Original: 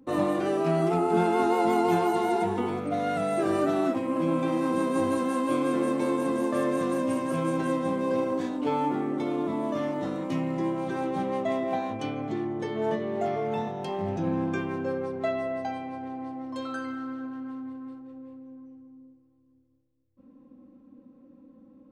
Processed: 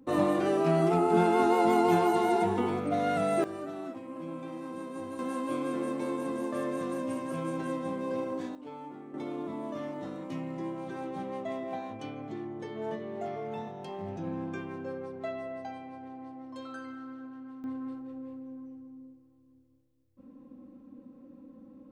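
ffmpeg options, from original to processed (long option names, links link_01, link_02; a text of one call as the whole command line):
ffmpeg -i in.wav -af "asetnsamples=nb_out_samples=441:pad=0,asendcmd='3.44 volume volume -13.5dB;5.19 volume volume -6.5dB;8.55 volume volume -17dB;9.14 volume volume -8dB;17.64 volume volume 2dB',volume=-0.5dB" out.wav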